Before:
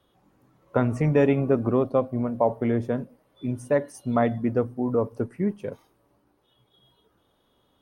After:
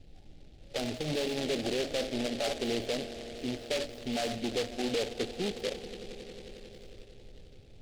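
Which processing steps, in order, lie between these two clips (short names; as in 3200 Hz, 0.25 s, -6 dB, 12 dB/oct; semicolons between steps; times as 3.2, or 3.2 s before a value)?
tilt +3 dB/oct; compressor, threshold -21 dBFS, peak gain reduction 4.5 dB; hard clip -27.5 dBFS, distortion -7 dB; tone controls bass -11 dB, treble +4 dB; added noise brown -57 dBFS; FFT band-reject 880–2500 Hz; limiter -30.5 dBFS, peak gain reduction 7.5 dB; on a send: swelling echo 90 ms, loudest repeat 5, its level -18 dB; on the sum: low-pass opened by the level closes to 600 Hz, open at -24 dBFS; noise-modulated delay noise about 3100 Hz, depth 0.15 ms; gain +6.5 dB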